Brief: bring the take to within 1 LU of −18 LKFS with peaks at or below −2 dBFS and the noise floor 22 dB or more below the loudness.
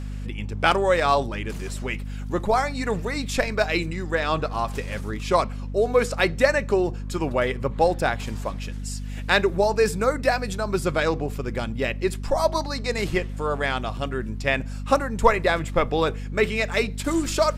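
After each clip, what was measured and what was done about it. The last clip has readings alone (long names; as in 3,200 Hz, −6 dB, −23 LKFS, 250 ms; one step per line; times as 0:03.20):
mains hum 50 Hz; hum harmonics up to 250 Hz; level of the hum −29 dBFS; integrated loudness −24.0 LKFS; sample peak −5.0 dBFS; target loudness −18.0 LKFS
→ hum removal 50 Hz, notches 5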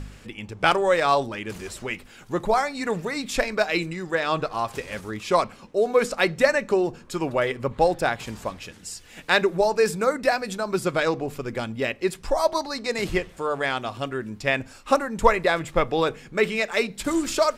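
mains hum none found; integrated loudness −24.5 LKFS; sample peak −5.5 dBFS; target loudness −18.0 LKFS
→ level +6.5 dB
brickwall limiter −2 dBFS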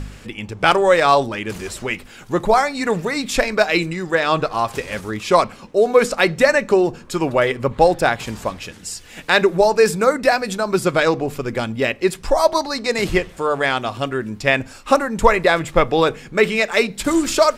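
integrated loudness −18.5 LKFS; sample peak −2.0 dBFS; background noise floor −41 dBFS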